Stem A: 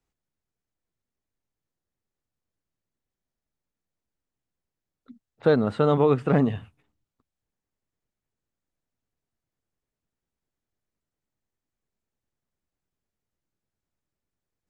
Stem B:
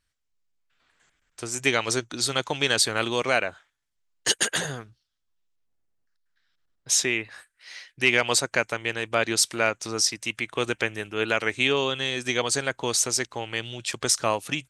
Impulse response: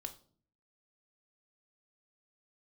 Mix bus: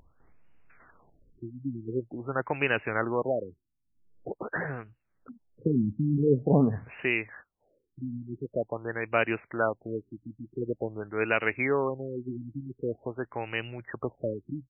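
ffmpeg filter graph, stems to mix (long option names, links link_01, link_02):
-filter_complex "[0:a]adelay=200,volume=-1dB[link_01];[1:a]volume=-1.5dB[link_02];[link_01][link_02]amix=inputs=2:normalize=0,acompressor=mode=upward:threshold=-41dB:ratio=2.5,afftfilt=real='re*lt(b*sr/1024,320*pow(3000/320,0.5+0.5*sin(2*PI*0.46*pts/sr)))':imag='im*lt(b*sr/1024,320*pow(3000/320,0.5+0.5*sin(2*PI*0.46*pts/sr)))':win_size=1024:overlap=0.75"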